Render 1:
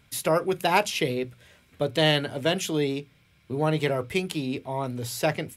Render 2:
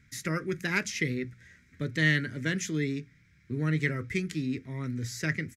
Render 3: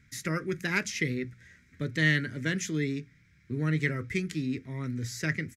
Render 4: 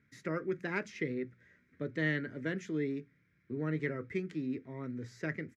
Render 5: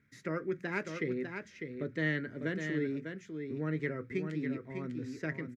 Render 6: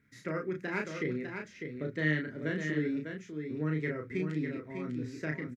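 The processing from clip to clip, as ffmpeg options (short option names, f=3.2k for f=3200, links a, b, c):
-af "firequalizer=gain_entry='entry(240,0);entry(760,-27);entry(1300,-6);entry(1900,6);entry(2800,-13);entry(6200,0);entry(9700,-14)':delay=0.05:min_phase=1"
-af anull
-af "bandpass=f=550:t=q:w=0.81:csg=0"
-af "aecho=1:1:600:0.473"
-filter_complex "[0:a]asplit=2[a][b];[b]adelay=33,volume=-3.5dB[c];[a][c]amix=inputs=2:normalize=0"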